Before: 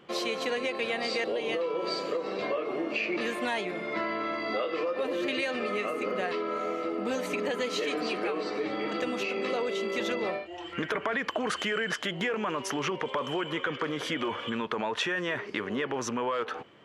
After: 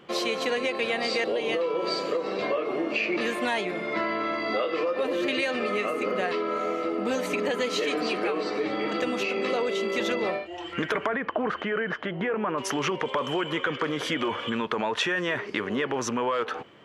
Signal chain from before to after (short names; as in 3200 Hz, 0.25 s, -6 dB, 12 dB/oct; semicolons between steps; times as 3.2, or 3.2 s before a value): 11.07–12.58 LPF 1700 Hz 12 dB/oct; gain +3.5 dB